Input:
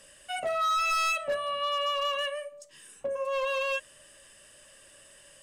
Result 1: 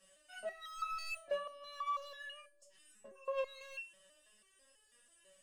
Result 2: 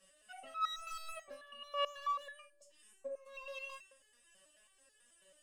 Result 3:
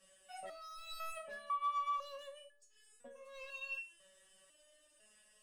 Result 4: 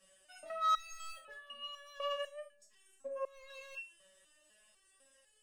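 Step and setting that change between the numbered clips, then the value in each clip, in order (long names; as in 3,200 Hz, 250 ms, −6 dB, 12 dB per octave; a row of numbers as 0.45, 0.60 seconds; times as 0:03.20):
step-sequenced resonator, speed: 6.1, 9.2, 2, 4 Hertz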